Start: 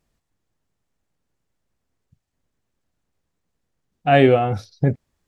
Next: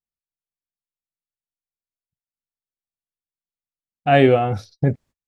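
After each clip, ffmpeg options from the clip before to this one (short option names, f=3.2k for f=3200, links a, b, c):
-af "agate=range=-30dB:threshold=-43dB:ratio=16:detection=peak"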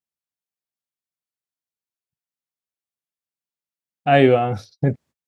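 -af "highpass=100"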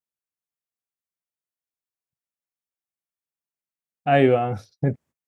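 -af "equalizer=f=4.2k:w=1.5:g=-6.5,volume=-3dB"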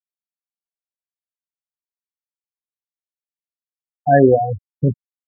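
-af "afftfilt=real='re*gte(hypot(re,im),0.251)':imag='im*gte(hypot(re,im),0.251)':win_size=1024:overlap=0.75,volume=5.5dB"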